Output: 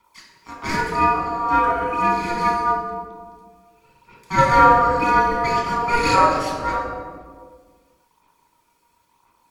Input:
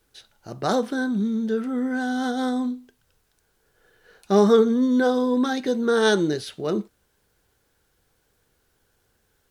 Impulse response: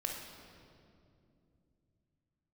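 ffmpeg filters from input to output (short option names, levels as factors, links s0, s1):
-filter_complex "[0:a]aphaser=in_gain=1:out_gain=1:delay=4.5:decay=0.76:speed=0.97:type=sinusoidal,acrossover=split=990[s0][s1];[s0]aeval=exprs='max(val(0),0)':c=same[s2];[s2][s1]amix=inputs=2:normalize=0,aeval=exprs='val(0)*sin(2*PI*1400*n/s)':c=same,afreqshift=-450[s3];[1:a]atrim=start_sample=2205,asetrate=83790,aresample=44100[s4];[s3][s4]afir=irnorm=-1:irlink=0,volume=2"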